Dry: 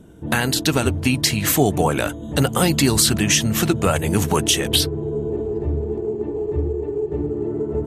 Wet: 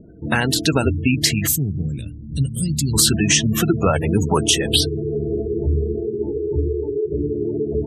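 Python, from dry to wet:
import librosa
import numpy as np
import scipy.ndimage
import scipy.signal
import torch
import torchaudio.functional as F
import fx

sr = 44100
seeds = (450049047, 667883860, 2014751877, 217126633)

y = fx.spec_gate(x, sr, threshold_db=-20, keep='strong')
y = fx.cheby1_bandstop(y, sr, low_hz=150.0, high_hz=6100.0, order=2, at=(1.46, 2.93), fade=0.02)
y = fx.doubler(y, sr, ms=15.0, db=-6, at=(5.17, 6.55), fade=0.02)
y = F.gain(torch.from_numpy(y), 1.5).numpy()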